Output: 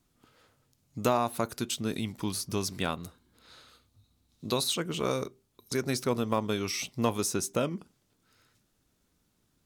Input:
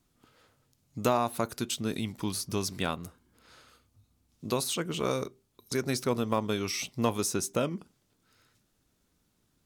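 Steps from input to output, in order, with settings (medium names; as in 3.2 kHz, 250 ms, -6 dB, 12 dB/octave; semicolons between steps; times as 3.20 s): 2.97–4.72 s: peaking EQ 3.9 kHz +9.5 dB 0.27 oct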